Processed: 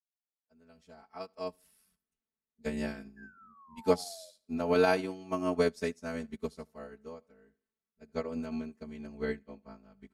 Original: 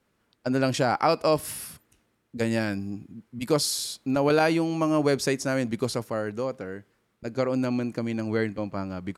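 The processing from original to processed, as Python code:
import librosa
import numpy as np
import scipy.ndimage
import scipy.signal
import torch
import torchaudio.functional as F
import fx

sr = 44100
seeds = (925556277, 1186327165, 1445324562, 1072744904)

p1 = fx.fade_in_head(x, sr, length_s=2.37)
p2 = fx.stretch_vocoder(p1, sr, factor=0.65)
p3 = fx.spec_paint(p2, sr, seeds[0], shape='fall', start_s=1.86, length_s=0.68, low_hz=570.0, high_hz=1700.0, level_db=-34.0)
p4 = fx.stretch_grains(p3, sr, factor=1.7, grain_ms=22.0)
p5 = p4 + fx.echo_feedback(p4, sr, ms=76, feedback_pct=35, wet_db=-19.0, dry=0)
y = fx.upward_expand(p5, sr, threshold_db=-36.0, expansion=2.5)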